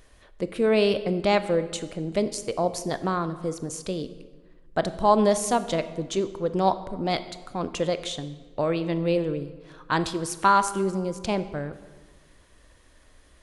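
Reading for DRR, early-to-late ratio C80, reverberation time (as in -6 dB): 11.5 dB, 15.0 dB, 1.4 s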